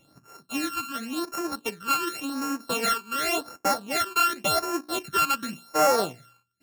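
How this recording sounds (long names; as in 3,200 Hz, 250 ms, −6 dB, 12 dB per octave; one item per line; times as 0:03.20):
a buzz of ramps at a fixed pitch in blocks of 32 samples
phaser sweep stages 12, 0.9 Hz, lowest notch 610–3,600 Hz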